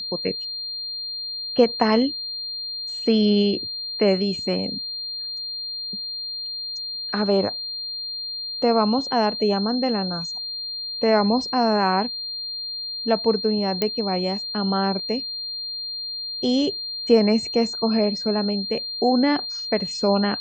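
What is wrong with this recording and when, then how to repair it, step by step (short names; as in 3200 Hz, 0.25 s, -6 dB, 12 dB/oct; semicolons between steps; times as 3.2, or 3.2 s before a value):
tone 4200 Hz -28 dBFS
13.82 pop -8 dBFS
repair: de-click; notch 4200 Hz, Q 30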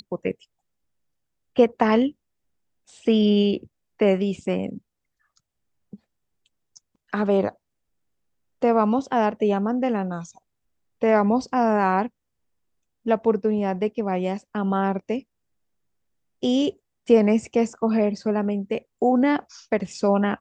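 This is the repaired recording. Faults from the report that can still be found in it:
none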